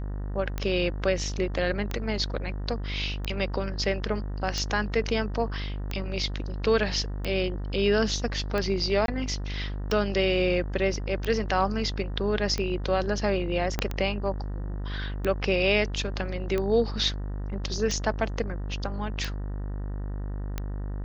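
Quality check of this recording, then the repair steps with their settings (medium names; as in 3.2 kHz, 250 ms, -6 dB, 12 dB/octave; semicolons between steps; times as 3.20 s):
buzz 50 Hz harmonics 38 -32 dBFS
tick 45 rpm -16 dBFS
9.06–9.08 s: dropout 22 ms
13.79 s: pop -11 dBFS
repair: de-click; de-hum 50 Hz, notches 38; interpolate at 9.06 s, 22 ms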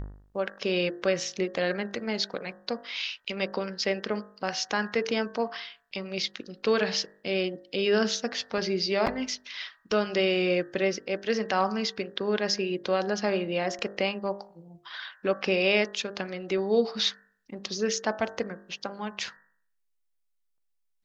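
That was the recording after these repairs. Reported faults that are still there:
13.79 s: pop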